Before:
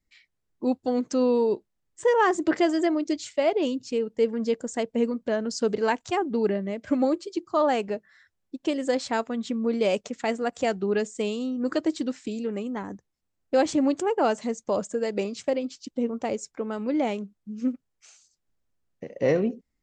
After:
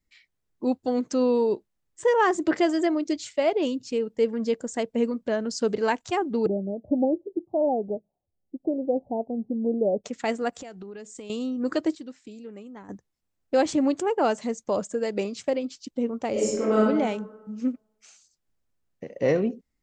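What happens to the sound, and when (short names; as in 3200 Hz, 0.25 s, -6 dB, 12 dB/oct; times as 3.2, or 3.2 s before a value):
6.46–10.04 steep low-pass 810 Hz 72 dB/oct
10.59–11.3 compressor 16:1, threshold -36 dBFS
11.95–12.89 gain -11 dB
16.32–16.8 reverb throw, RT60 1.2 s, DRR -9 dB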